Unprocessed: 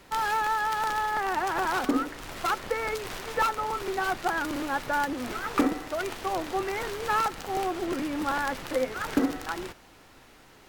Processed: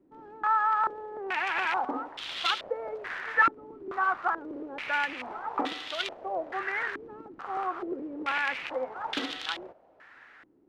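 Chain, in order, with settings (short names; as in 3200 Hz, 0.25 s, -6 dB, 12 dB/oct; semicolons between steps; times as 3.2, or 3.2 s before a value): tilt +4 dB/oct; stepped low-pass 2.3 Hz 310–3400 Hz; gain -5 dB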